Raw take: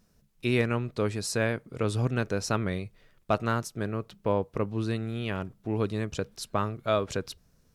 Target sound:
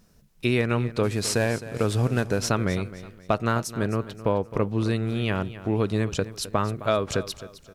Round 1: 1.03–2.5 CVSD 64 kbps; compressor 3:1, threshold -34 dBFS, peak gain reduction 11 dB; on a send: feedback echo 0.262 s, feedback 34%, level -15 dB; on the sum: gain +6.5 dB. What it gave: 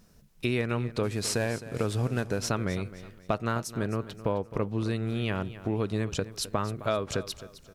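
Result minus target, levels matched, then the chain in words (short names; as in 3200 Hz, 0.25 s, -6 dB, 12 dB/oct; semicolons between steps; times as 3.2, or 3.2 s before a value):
compressor: peak gain reduction +5.5 dB
1.03–2.5 CVSD 64 kbps; compressor 3:1, threshold -26 dBFS, peak gain reduction 6 dB; on a send: feedback echo 0.262 s, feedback 34%, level -15 dB; on the sum: gain +6.5 dB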